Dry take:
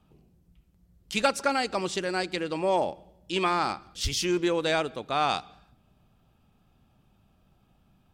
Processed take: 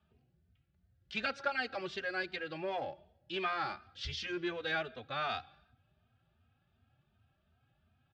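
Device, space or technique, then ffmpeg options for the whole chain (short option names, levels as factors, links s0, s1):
barber-pole flanger into a guitar amplifier: -filter_complex "[0:a]asplit=2[s0][s1];[s1]adelay=3,afreqshift=2.7[s2];[s0][s2]amix=inputs=2:normalize=1,asoftclip=type=tanh:threshold=0.112,highpass=79,equalizer=f=85:t=q:w=4:g=8,equalizer=f=190:t=q:w=4:g=-9,equalizer=f=300:t=q:w=4:g=-8,equalizer=f=460:t=q:w=4:g=-6,equalizer=f=980:t=q:w=4:g=-9,equalizer=f=1600:t=q:w=4:g=7,lowpass=f=4300:w=0.5412,lowpass=f=4300:w=1.3066,volume=0.631"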